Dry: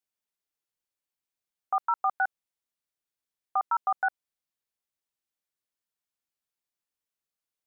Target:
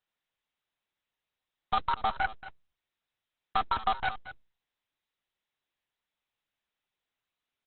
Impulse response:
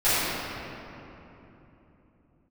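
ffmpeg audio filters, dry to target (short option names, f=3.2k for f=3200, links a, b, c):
-filter_complex "[0:a]highpass=500,aeval=exprs='0.126*(cos(1*acos(clip(val(0)/0.126,-1,1)))-cos(1*PI/2))+0.0316*(cos(8*acos(clip(val(0)/0.126,-1,1)))-cos(8*PI/2))':c=same,asplit=2[a][b];[b]asoftclip=type=hard:threshold=-26dB,volume=-9.5dB[c];[a][c]amix=inputs=2:normalize=0,aecho=1:1:229:0.211,volume=-1.5dB" -ar 48000 -c:a libopus -b:a 6k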